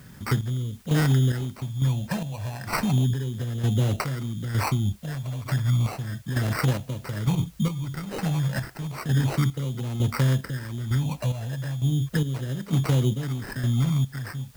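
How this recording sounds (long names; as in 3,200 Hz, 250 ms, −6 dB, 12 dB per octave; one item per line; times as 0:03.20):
phaser sweep stages 12, 0.33 Hz, lowest notch 370–1,300 Hz
aliases and images of a low sample rate 3,400 Hz, jitter 0%
chopped level 1.1 Hz, depth 60%, duty 45%
a quantiser's noise floor 10 bits, dither triangular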